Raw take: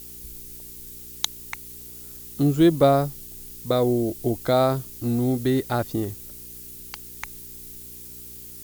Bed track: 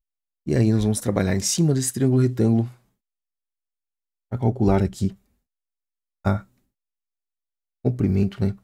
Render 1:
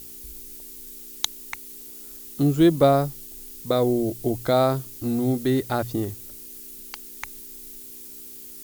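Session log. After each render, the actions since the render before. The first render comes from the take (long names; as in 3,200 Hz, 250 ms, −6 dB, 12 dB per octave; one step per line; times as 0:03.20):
hum removal 60 Hz, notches 3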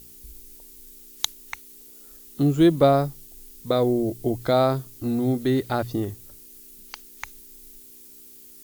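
noise reduction from a noise print 6 dB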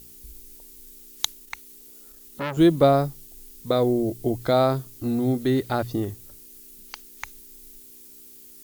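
0:01.39–0:02.57: saturating transformer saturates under 1,700 Hz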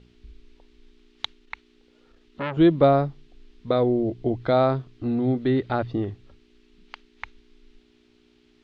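low-pass filter 3,500 Hz 24 dB per octave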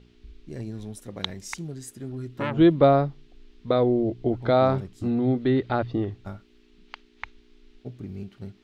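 mix in bed track −16.5 dB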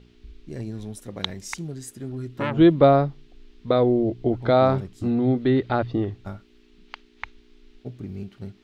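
level +2 dB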